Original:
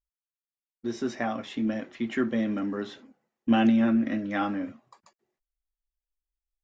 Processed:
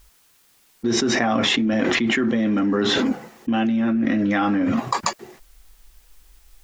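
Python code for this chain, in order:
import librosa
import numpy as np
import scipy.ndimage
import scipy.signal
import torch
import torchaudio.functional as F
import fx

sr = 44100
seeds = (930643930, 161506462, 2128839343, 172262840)

y = fx.notch(x, sr, hz=600.0, q=12.0)
y = fx.env_flatten(y, sr, amount_pct=100)
y = F.gain(torch.from_numpy(y), -2.0).numpy()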